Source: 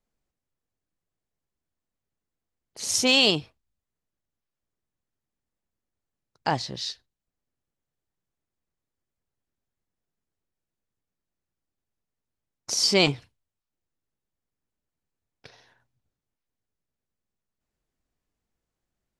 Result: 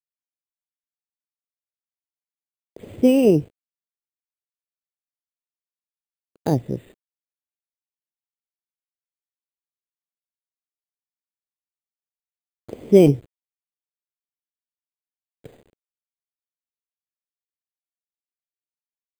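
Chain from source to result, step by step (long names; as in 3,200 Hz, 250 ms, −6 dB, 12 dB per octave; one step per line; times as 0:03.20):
dynamic equaliser 1,500 Hz, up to −7 dB, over −36 dBFS, Q 0.84
bad sample-rate conversion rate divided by 8×, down filtered, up hold
bit reduction 9 bits
low shelf with overshoot 670 Hz +13.5 dB, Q 1.5
level −3.5 dB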